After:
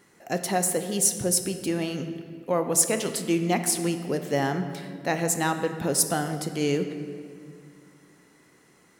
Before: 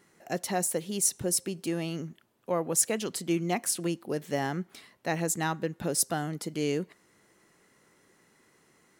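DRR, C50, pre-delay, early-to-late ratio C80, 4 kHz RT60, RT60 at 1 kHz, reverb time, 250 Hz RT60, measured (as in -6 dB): 7.0 dB, 8.5 dB, 4 ms, 9.5 dB, 1.5 s, 1.9 s, 2.1 s, 3.2 s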